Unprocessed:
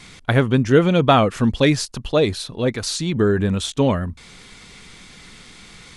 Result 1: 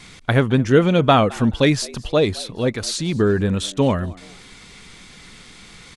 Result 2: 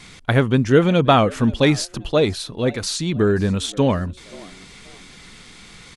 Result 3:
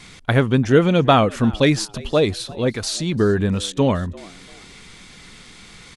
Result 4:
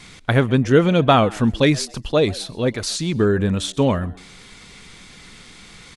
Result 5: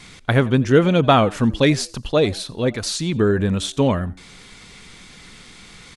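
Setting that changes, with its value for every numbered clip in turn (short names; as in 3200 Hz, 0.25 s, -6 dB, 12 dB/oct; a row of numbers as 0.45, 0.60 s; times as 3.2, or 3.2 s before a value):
frequency-shifting echo, time: 214, 530, 344, 131, 87 ms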